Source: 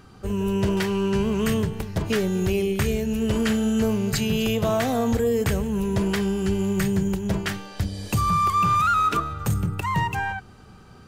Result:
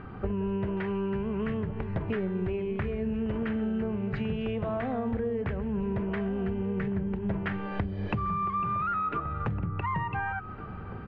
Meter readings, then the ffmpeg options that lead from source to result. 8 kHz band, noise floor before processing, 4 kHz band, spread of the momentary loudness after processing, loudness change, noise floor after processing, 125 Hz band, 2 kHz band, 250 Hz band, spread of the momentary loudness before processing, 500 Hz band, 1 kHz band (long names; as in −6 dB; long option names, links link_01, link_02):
below −40 dB, −47 dBFS, −18.0 dB, 4 LU, −8.0 dB, −40 dBFS, −7.0 dB, −7.5 dB, −7.0 dB, 7 LU, −7.5 dB, −8.5 dB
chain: -filter_complex "[0:a]lowpass=frequency=2300:width=0.5412,lowpass=frequency=2300:width=1.3066,acompressor=threshold=-34dB:ratio=16,asplit=2[link_01][link_02];[link_02]adelay=1458,volume=-11dB,highshelf=frequency=4000:gain=-32.8[link_03];[link_01][link_03]amix=inputs=2:normalize=0,volume=6.5dB"